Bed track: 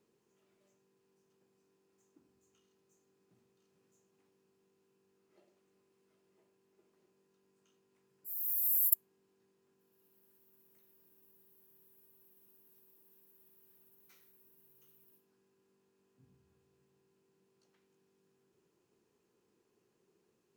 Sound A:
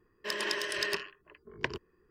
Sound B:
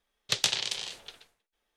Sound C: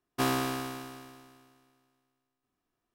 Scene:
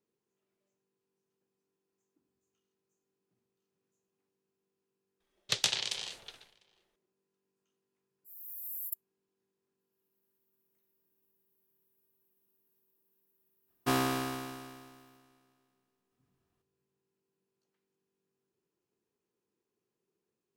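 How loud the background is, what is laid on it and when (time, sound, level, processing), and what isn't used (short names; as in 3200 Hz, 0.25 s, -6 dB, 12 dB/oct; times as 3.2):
bed track -10.5 dB
5.2 add B -3 dB + outdoor echo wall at 120 m, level -26 dB
13.68 add C -1 dB
not used: A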